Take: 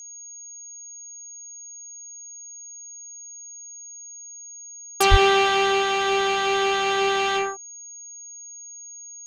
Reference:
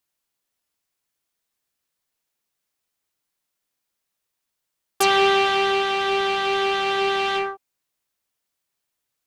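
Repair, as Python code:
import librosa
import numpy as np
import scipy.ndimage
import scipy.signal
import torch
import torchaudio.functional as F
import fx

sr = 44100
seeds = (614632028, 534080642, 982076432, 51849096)

y = fx.notch(x, sr, hz=6600.0, q=30.0)
y = fx.fix_deplosive(y, sr, at_s=(5.1,))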